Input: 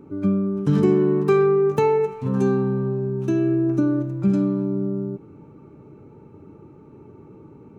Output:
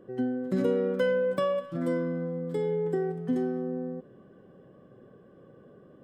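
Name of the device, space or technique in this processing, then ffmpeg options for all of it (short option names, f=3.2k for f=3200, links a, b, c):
nightcore: -af "asetrate=56889,aresample=44100,volume=-8.5dB"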